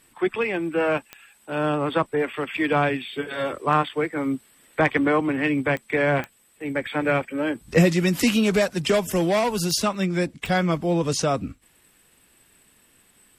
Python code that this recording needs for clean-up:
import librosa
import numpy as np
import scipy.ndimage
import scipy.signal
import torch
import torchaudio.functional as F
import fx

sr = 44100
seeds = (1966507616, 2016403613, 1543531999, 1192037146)

y = fx.fix_declip(x, sr, threshold_db=-8.0)
y = fx.fix_declick_ar(y, sr, threshold=10.0)